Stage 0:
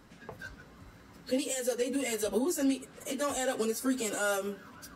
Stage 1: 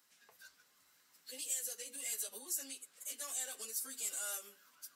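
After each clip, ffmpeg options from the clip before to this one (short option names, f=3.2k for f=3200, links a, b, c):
-af "aderivative,volume=-1.5dB"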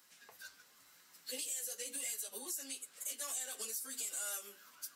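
-af "alimiter=level_in=12dB:limit=-24dB:level=0:latency=1:release=262,volume=-12dB,flanger=delay=5.3:depth=5:regen=78:speed=0.94:shape=sinusoidal,volume=10.5dB"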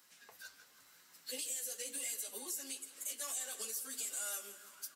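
-af "aecho=1:1:166|332|498|664|830|996:0.178|0.103|0.0598|0.0347|0.0201|0.0117"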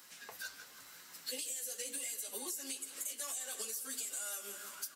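-af "acompressor=threshold=-47dB:ratio=6,volume=8.5dB"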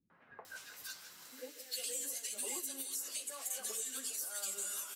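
-filter_complex "[0:a]acrossover=split=240|1700[a][b][c];[b]adelay=100[d];[c]adelay=450[e];[a][d][e]amix=inputs=3:normalize=0,volume=1dB"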